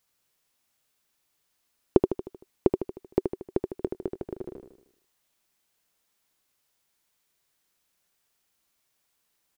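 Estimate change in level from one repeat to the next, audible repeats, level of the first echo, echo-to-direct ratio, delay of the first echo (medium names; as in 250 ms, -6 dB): -6.0 dB, 5, -6.0 dB, -5.0 dB, 77 ms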